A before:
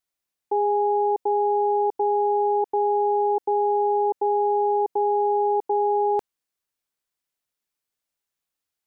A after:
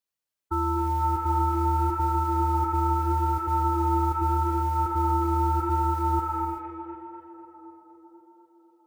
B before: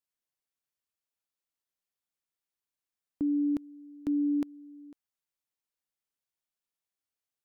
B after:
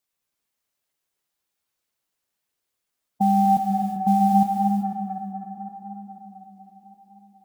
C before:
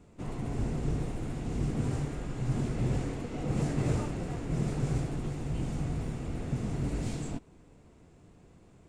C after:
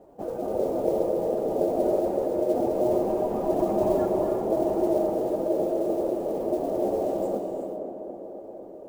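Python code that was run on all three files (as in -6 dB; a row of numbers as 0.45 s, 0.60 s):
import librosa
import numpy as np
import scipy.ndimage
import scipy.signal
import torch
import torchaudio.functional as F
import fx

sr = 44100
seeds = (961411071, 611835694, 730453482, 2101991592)

p1 = fx.spec_expand(x, sr, power=1.6)
p2 = fx.mod_noise(p1, sr, seeds[0], snr_db=28)
p3 = p2 * np.sin(2.0 * np.pi * 490.0 * np.arange(len(p2)) / sr)
p4 = p3 + fx.echo_tape(p3, sr, ms=251, feedback_pct=85, wet_db=-7.0, lp_hz=1500.0, drive_db=17.0, wow_cents=35, dry=0)
p5 = fx.rev_gated(p4, sr, seeds[1], gate_ms=410, shape='rising', drr_db=5.5)
y = p5 * 10.0 ** (-26 / 20.0) / np.sqrt(np.mean(np.square(p5)))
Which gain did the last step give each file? -1.0 dB, +12.0 dB, +7.0 dB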